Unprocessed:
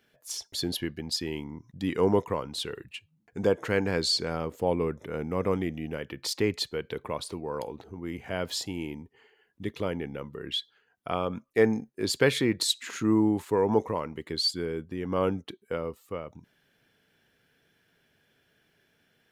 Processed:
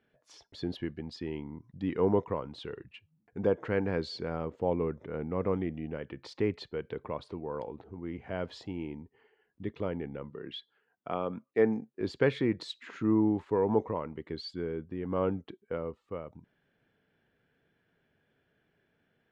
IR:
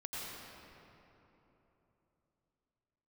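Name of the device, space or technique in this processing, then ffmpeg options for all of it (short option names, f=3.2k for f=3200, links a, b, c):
phone in a pocket: -filter_complex "[0:a]lowpass=3.8k,highshelf=f=2.3k:g=-11,asettb=1/sr,asplit=3[a][b][c];[a]atrim=end=10.304[d];[b]atrim=start=10.3:end=12.01,asetpts=PTS-STARTPTS,afade=t=in:d=0.004:c=qsin,afade=t=out:st=1.706:d=0.004:c=qsin,highpass=140[e];[c]atrim=start=12.006[f];[d][e]acrossfade=d=0.004:c1=hsin:c2=qsin[g];[g][f]acrossfade=d=0.004:c1=qsin:c2=hsin,volume=-2.5dB"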